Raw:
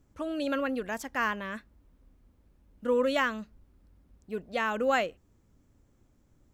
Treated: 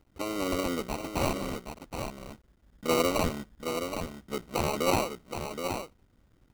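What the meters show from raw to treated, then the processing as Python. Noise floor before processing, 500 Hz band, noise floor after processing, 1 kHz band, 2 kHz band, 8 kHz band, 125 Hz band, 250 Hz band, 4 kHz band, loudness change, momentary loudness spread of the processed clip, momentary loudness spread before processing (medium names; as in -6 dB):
-66 dBFS, +0.5 dB, -66 dBFS, +0.5 dB, -5.5 dB, +11.5 dB, no reading, +2.0 dB, +4.5 dB, -1.0 dB, 12 LU, 13 LU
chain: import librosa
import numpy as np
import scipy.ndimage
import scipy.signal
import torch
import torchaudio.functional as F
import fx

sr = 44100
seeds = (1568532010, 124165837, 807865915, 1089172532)

p1 = fx.cycle_switch(x, sr, every=3, mode='muted')
p2 = fx.sample_hold(p1, sr, seeds[0], rate_hz=1700.0, jitter_pct=0)
p3 = p2 + fx.echo_single(p2, sr, ms=772, db=-7.0, dry=0)
y = F.gain(torch.from_numpy(p3), 2.0).numpy()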